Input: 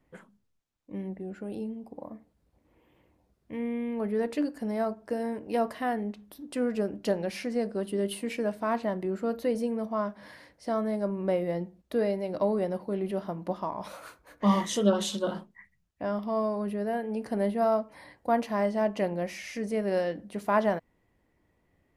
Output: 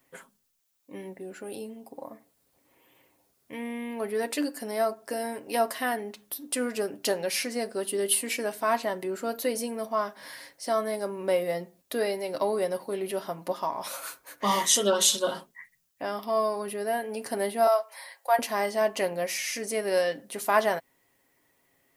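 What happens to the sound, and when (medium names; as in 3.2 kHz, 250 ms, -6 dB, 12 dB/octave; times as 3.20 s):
17.67–18.39 s: high-pass 560 Hz 24 dB/octave
whole clip: RIAA curve recording; comb 7.4 ms, depth 42%; trim +3 dB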